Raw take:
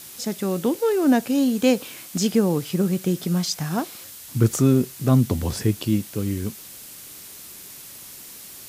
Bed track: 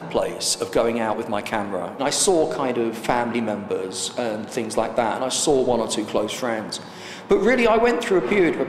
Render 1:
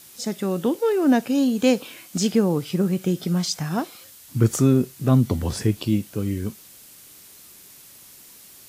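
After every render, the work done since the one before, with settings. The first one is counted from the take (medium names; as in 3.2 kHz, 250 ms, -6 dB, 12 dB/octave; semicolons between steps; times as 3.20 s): noise print and reduce 6 dB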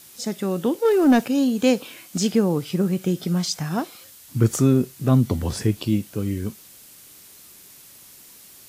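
0.85–1.28 s: waveshaping leveller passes 1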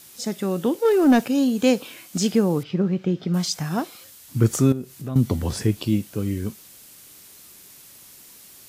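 2.63–3.34 s: distance through air 210 m; 4.72–5.16 s: compression 2:1, threshold -35 dBFS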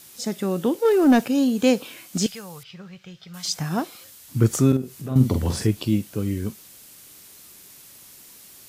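2.26–3.45 s: amplifier tone stack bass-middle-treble 10-0-10; 4.68–5.67 s: doubling 46 ms -6 dB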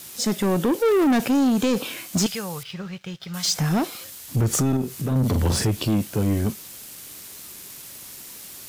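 peak limiter -15 dBFS, peak gain reduction 8.5 dB; waveshaping leveller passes 2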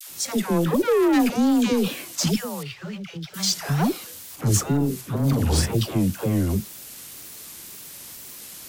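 wow and flutter 140 cents; phase dispersion lows, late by 102 ms, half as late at 630 Hz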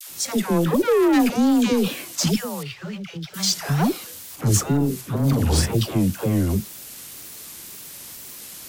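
trim +1.5 dB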